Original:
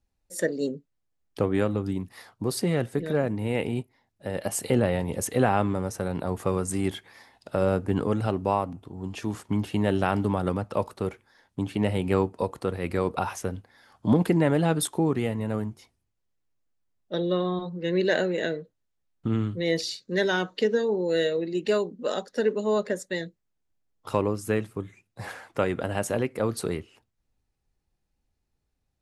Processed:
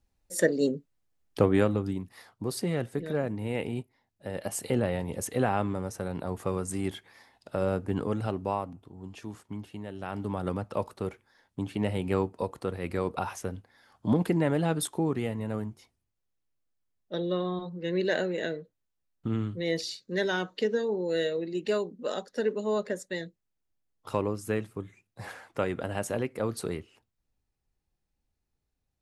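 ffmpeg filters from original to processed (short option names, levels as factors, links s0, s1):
-af "volume=5.96,afade=t=out:st=1.44:d=0.58:silence=0.446684,afade=t=out:st=8.24:d=1.7:silence=0.237137,afade=t=in:st=9.94:d=0.6:silence=0.223872"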